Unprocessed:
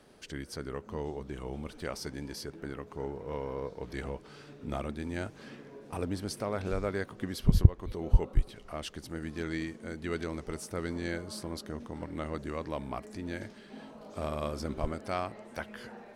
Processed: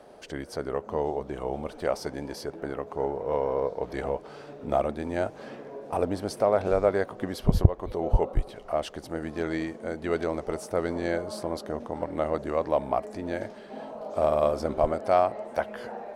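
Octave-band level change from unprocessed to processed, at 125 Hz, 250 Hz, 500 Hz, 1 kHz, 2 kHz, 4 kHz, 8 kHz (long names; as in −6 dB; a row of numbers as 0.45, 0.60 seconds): +0.5, +4.0, +11.5, +11.0, +3.5, +0.5, 0.0 decibels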